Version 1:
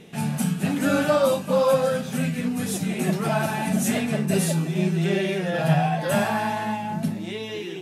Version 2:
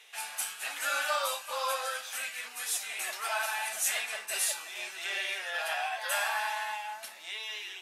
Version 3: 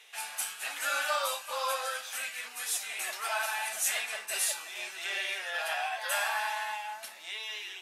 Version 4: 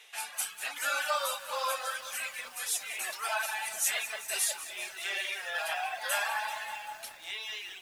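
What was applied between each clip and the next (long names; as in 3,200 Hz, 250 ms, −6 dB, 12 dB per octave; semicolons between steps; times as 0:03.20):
Bessel high-pass filter 1,300 Hz, order 4
no processing that can be heard
reverb reduction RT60 1.1 s; feedback echo at a low word length 193 ms, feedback 80%, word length 8 bits, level −14 dB; level +1 dB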